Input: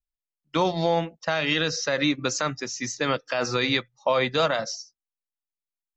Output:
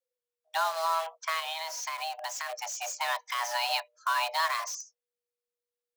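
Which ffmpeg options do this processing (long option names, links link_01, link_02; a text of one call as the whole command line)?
ffmpeg -i in.wav -filter_complex "[0:a]asplit=2[link_01][link_02];[link_02]aeval=exprs='(mod(25.1*val(0)+1,2)-1)/25.1':channel_layout=same,volume=-4.5dB[link_03];[link_01][link_03]amix=inputs=2:normalize=0,afreqshift=480,asplit=3[link_04][link_05][link_06];[link_04]afade=type=out:start_time=1.39:duration=0.02[link_07];[link_05]acompressor=threshold=-27dB:ratio=4,afade=type=in:start_time=1.39:duration=0.02,afade=type=out:start_time=2.48:duration=0.02[link_08];[link_06]afade=type=in:start_time=2.48:duration=0.02[link_09];[link_07][link_08][link_09]amix=inputs=3:normalize=0,volume=-6dB" out.wav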